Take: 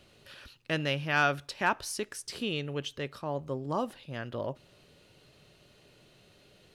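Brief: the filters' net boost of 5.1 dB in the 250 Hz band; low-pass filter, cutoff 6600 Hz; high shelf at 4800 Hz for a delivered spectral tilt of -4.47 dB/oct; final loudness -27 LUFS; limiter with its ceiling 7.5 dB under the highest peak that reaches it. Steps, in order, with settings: LPF 6600 Hz; bell 250 Hz +6.5 dB; high shelf 4800 Hz +9 dB; gain +6.5 dB; limiter -14.5 dBFS

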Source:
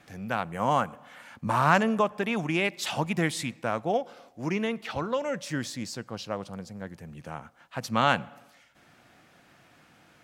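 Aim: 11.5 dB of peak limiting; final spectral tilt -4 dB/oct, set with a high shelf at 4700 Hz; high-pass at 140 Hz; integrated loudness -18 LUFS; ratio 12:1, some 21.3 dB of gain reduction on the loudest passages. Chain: HPF 140 Hz; high shelf 4700 Hz +3.5 dB; compressor 12:1, threshold -38 dBFS; gain +28 dB; limiter -7.5 dBFS

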